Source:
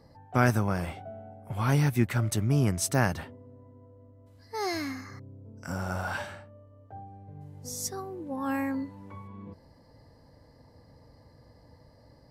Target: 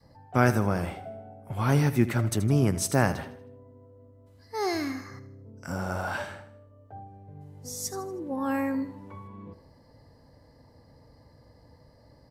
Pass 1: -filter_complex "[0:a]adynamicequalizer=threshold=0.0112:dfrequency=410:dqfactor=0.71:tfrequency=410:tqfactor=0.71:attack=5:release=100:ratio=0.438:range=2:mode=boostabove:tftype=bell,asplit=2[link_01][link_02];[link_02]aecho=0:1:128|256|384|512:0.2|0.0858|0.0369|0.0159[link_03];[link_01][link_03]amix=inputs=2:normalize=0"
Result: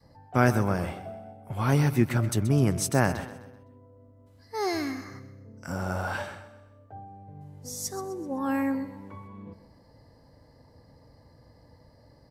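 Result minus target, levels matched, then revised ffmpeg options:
echo 49 ms late
-filter_complex "[0:a]adynamicequalizer=threshold=0.0112:dfrequency=410:dqfactor=0.71:tfrequency=410:tqfactor=0.71:attack=5:release=100:ratio=0.438:range=2:mode=boostabove:tftype=bell,asplit=2[link_01][link_02];[link_02]aecho=0:1:79|158|237|316:0.2|0.0858|0.0369|0.0159[link_03];[link_01][link_03]amix=inputs=2:normalize=0"

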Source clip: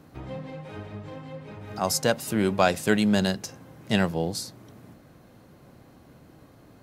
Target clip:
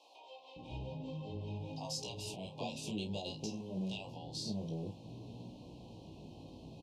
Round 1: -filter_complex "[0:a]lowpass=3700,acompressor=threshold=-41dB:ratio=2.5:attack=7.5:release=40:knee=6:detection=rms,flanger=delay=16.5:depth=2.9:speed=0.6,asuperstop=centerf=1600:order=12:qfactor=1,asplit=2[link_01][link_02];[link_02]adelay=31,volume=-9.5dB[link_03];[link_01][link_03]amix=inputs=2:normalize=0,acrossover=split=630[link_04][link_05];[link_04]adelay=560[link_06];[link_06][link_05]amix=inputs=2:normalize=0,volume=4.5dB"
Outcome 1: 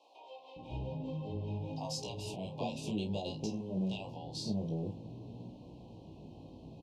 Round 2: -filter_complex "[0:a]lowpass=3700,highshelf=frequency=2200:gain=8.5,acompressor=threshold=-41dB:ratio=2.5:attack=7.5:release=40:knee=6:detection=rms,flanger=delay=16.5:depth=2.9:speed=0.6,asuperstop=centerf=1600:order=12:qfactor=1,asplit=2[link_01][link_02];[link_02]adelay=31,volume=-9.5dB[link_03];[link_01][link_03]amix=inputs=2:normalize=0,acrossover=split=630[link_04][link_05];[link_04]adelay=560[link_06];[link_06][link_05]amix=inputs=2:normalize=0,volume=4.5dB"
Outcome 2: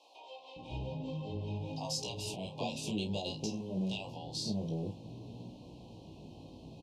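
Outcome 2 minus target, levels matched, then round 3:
downward compressor: peak gain reduction −4 dB
-filter_complex "[0:a]lowpass=3700,highshelf=frequency=2200:gain=8.5,acompressor=threshold=-47.5dB:ratio=2.5:attack=7.5:release=40:knee=6:detection=rms,flanger=delay=16.5:depth=2.9:speed=0.6,asuperstop=centerf=1600:order=12:qfactor=1,asplit=2[link_01][link_02];[link_02]adelay=31,volume=-9.5dB[link_03];[link_01][link_03]amix=inputs=2:normalize=0,acrossover=split=630[link_04][link_05];[link_04]adelay=560[link_06];[link_06][link_05]amix=inputs=2:normalize=0,volume=4.5dB"

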